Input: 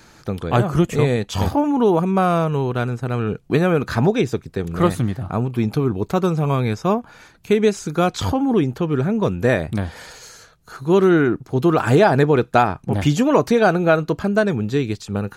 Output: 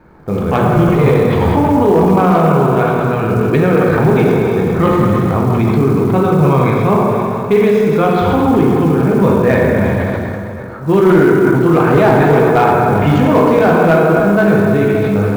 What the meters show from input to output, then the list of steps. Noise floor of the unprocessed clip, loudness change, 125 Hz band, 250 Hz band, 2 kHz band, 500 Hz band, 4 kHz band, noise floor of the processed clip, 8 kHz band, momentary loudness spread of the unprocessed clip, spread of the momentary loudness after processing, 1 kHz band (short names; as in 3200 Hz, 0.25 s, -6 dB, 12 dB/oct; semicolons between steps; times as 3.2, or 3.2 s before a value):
-51 dBFS, +7.5 dB, +7.5 dB, +7.5 dB, +6.5 dB, +7.5 dB, +1.0 dB, -22 dBFS, n/a, 8 LU, 5 LU, +8.0 dB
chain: low-pass opened by the level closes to 970 Hz, open at -11 dBFS; notch 1000 Hz, Q 20; plate-style reverb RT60 2.8 s, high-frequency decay 0.65×, DRR -3 dB; treble ducked by the level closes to 2600 Hz, closed at -11 dBFS; in parallel at +3 dB: limiter -9 dBFS, peak gain reduction 12 dB; on the sum: small resonant body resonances 1000/2200 Hz, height 10 dB, ringing for 50 ms; short-mantissa float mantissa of 4-bit; sustainer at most 20 dB/s; gain -4 dB